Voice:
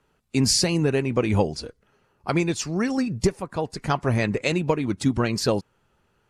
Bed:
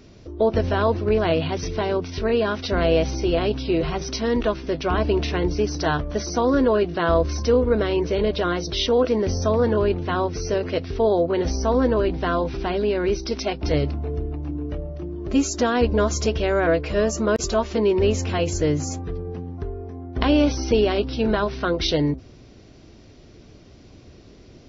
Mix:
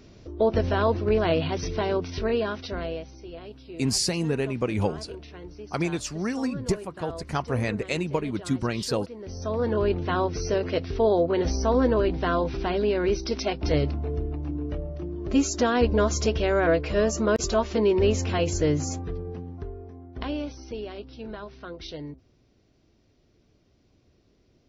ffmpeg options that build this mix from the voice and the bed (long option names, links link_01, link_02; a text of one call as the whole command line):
ffmpeg -i stem1.wav -i stem2.wav -filter_complex "[0:a]adelay=3450,volume=-4.5dB[link_01];[1:a]volume=15dB,afade=type=out:start_time=2.13:duration=0.93:silence=0.141254,afade=type=in:start_time=9.19:duration=0.79:silence=0.133352,afade=type=out:start_time=18.91:duration=1.62:silence=0.188365[link_02];[link_01][link_02]amix=inputs=2:normalize=0" out.wav